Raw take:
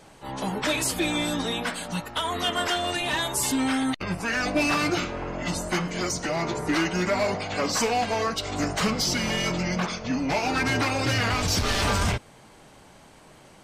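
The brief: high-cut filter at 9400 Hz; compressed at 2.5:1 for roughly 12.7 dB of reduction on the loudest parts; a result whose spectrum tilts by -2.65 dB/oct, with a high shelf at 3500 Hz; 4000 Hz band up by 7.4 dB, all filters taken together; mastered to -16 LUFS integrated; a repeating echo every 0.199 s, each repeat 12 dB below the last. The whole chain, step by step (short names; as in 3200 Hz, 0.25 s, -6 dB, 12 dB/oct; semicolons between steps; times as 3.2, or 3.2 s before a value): LPF 9400 Hz; high shelf 3500 Hz +4.5 dB; bell 4000 Hz +6.5 dB; compressor 2.5:1, threshold -37 dBFS; feedback echo 0.199 s, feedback 25%, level -12 dB; gain +17 dB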